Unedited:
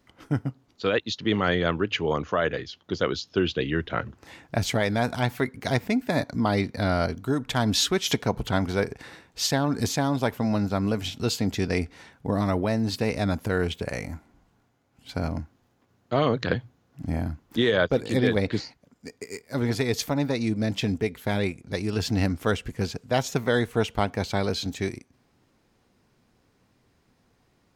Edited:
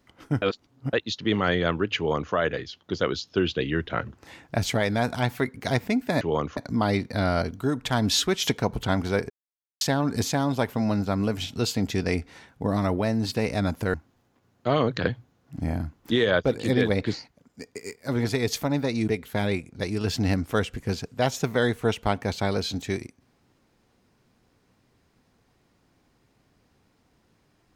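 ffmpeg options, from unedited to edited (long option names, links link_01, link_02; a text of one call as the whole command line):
ffmpeg -i in.wav -filter_complex "[0:a]asplit=9[link_01][link_02][link_03][link_04][link_05][link_06][link_07][link_08][link_09];[link_01]atrim=end=0.422[link_10];[link_02]atrim=start=0.418:end=0.932,asetpts=PTS-STARTPTS,areverse[link_11];[link_03]atrim=start=0.928:end=6.212[link_12];[link_04]atrim=start=1.968:end=2.332[link_13];[link_05]atrim=start=6.208:end=8.94,asetpts=PTS-STARTPTS,afade=type=out:start_time=2.728:duration=0.004:curve=hsin[link_14];[link_06]atrim=start=8.94:end=9.45,asetpts=PTS-STARTPTS,volume=0[link_15];[link_07]atrim=start=9.45:end=13.582,asetpts=PTS-STARTPTS,afade=type=in:duration=0.004:curve=hsin[link_16];[link_08]atrim=start=15.398:end=20.542[link_17];[link_09]atrim=start=20.998[link_18];[link_10][link_11]acrossfade=duration=0.004:curve1=hsin:curve2=hsin[link_19];[link_19][link_12]acrossfade=duration=0.004:curve1=hsin:curve2=hsin[link_20];[link_20][link_13]acrossfade=duration=0.004:curve1=hsin:curve2=hsin[link_21];[link_14][link_15][link_16]concat=n=3:v=0:a=1[link_22];[link_21][link_22]acrossfade=duration=0.004:curve1=hsin:curve2=hsin[link_23];[link_23][link_17]acrossfade=duration=0.004:curve1=hsin:curve2=hsin[link_24];[link_24][link_18]acrossfade=duration=0.004:curve1=hsin:curve2=hsin" out.wav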